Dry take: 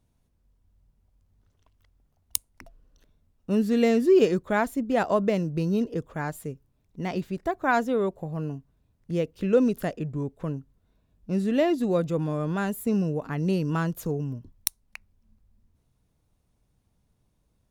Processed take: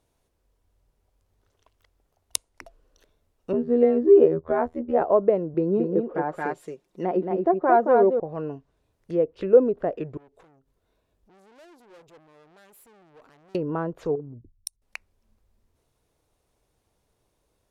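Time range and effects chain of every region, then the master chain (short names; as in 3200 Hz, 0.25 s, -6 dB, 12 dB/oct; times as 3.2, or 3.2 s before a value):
3.53–5.02 bell 78 Hz +12 dB 2.3 oct + robotiser 80.2 Hz
5.54–8.2 resonant low shelf 140 Hz -12 dB, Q 1.5 + comb 5.6 ms, depth 46% + echo 0.223 s -4 dB
10.17–13.55 tube stage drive 38 dB, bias 0.55 + compressor 16:1, threshold -54 dBFS
14.15–14.82 formant sharpening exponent 2 + compressor 5:1, threshold -32 dBFS
whole clip: treble ducked by the level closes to 850 Hz, closed at -23 dBFS; resonant low shelf 290 Hz -9 dB, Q 1.5; gain +4.5 dB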